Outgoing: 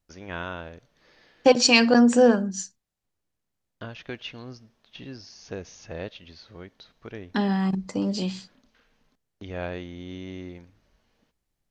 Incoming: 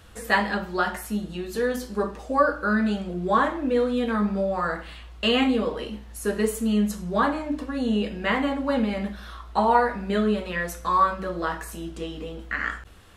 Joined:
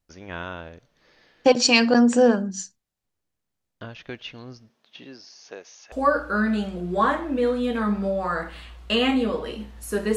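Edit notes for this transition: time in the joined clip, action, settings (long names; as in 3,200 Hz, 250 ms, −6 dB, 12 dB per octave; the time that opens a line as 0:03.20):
outgoing
0:04.68–0:05.92: high-pass filter 150 Hz → 780 Hz
0:05.92: continue with incoming from 0:02.25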